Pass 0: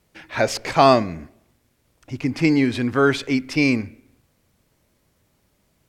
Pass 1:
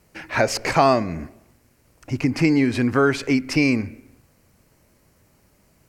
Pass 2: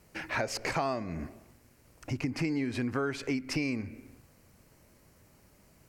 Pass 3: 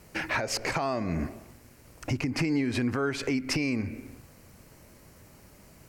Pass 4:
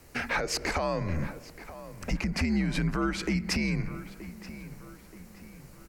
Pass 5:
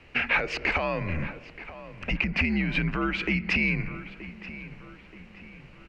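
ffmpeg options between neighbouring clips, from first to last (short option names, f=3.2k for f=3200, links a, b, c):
-af "acompressor=threshold=-25dB:ratio=2,equalizer=f=3.5k:t=o:w=0.31:g=-10,volume=6dB"
-af "acompressor=threshold=-30dB:ratio=3,volume=-2dB"
-af "alimiter=level_in=2dB:limit=-24dB:level=0:latency=1:release=151,volume=-2dB,volume=7.5dB"
-filter_complex "[0:a]afreqshift=-81,asplit=2[a][b];[b]adelay=927,lowpass=f=2.8k:p=1,volume=-14.5dB,asplit=2[c][d];[d]adelay=927,lowpass=f=2.8k:p=1,volume=0.47,asplit=2[e][f];[f]adelay=927,lowpass=f=2.8k:p=1,volume=0.47,asplit=2[g][h];[h]adelay=927,lowpass=f=2.8k:p=1,volume=0.47[i];[a][c][e][g][i]amix=inputs=5:normalize=0"
-af "lowpass=f=2.7k:t=q:w=4.5"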